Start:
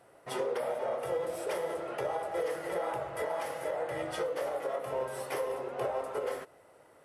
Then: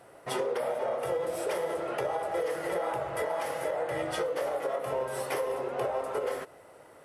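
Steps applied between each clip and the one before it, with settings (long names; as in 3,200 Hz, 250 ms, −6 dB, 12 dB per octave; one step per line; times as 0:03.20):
downward compressor 2 to 1, threshold −36 dBFS, peak gain reduction 5 dB
level +6 dB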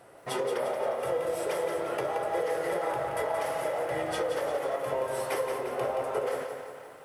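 delay with a band-pass on its return 249 ms, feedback 65%, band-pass 1,500 Hz, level −13.5 dB
feedback echo at a low word length 175 ms, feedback 55%, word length 10 bits, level −7 dB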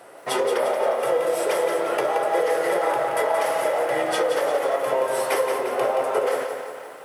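Bessel high-pass filter 300 Hz, order 2
level +9 dB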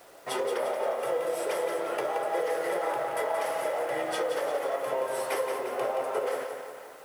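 bit-depth reduction 8 bits, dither none
level −7.5 dB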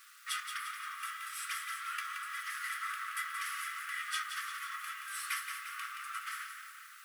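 linear-phase brick-wall high-pass 1,100 Hz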